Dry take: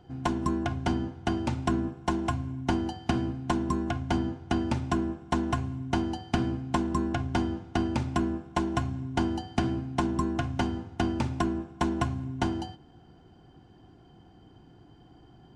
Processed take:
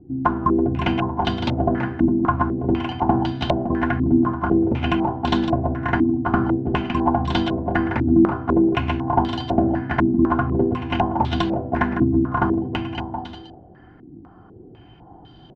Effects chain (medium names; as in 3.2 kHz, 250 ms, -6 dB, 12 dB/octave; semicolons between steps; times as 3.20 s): bouncing-ball echo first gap 330 ms, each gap 0.7×, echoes 5; step-sequenced low-pass 4 Hz 300–3700 Hz; trim +4.5 dB